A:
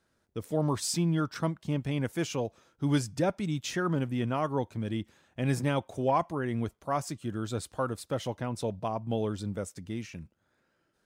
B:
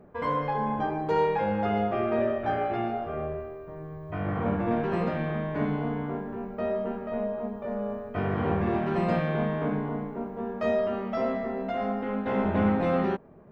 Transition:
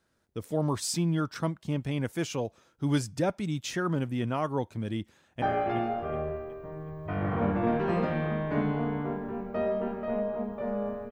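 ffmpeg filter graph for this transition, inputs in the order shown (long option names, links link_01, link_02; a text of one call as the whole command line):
ffmpeg -i cue0.wav -i cue1.wav -filter_complex "[0:a]apad=whole_dur=11.11,atrim=end=11.11,atrim=end=5.422[link_01];[1:a]atrim=start=2.458:end=8.15[link_02];[link_01][link_02]acrossfade=duration=0.004:curve1=hsin:curve2=hsin,asplit=2[link_03][link_04];[link_04]afade=type=in:start_time=5.08:duration=0.01,afade=type=out:start_time=5.42:duration=0.01,aecho=0:1:370|740|1110|1480|1850:0.334965|0.150734|0.0678305|0.0305237|0.0137357[link_05];[link_03][link_05]amix=inputs=2:normalize=0" out.wav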